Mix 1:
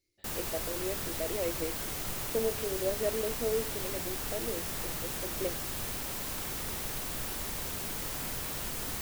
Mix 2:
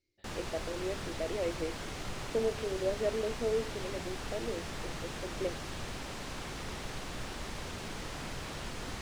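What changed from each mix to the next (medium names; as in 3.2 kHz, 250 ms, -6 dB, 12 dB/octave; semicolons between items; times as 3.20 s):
master: add distance through air 93 m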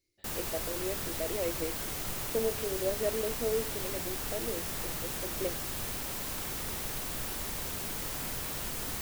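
master: remove distance through air 93 m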